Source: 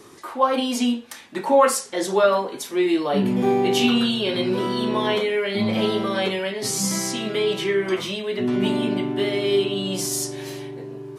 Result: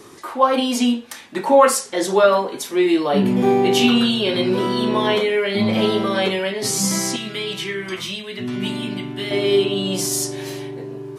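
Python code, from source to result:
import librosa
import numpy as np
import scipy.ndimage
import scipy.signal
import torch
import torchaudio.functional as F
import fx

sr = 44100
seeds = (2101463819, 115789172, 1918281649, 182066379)

y = fx.peak_eq(x, sr, hz=510.0, db=-12.0, octaves=2.4, at=(7.16, 9.31))
y = y * librosa.db_to_amplitude(3.5)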